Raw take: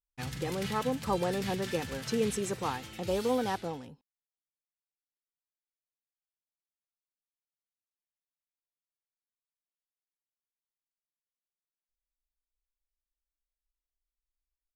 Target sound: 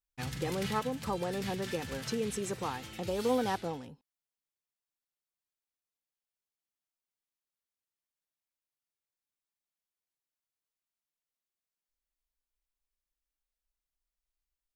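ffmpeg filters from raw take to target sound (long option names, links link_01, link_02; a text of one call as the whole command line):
ffmpeg -i in.wav -filter_complex "[0:a]asplit=3[link_01][link_02][link_03];[link_01]afade=type=out:start_time=0.79:duration=0.02[link_04];[link_02]acompressor=threshold=-33dB:ratio=2,afade=type=in:start_time=0.79:duration=0.02,afade=type=out:start_time=3.18:duration=0.02[link_05];[link_03]afade=type=in:start_time=3.18:duration=0.02[link_06];[link_04][link_05][link_06]amix=inputs=3:normalize=0" out.wav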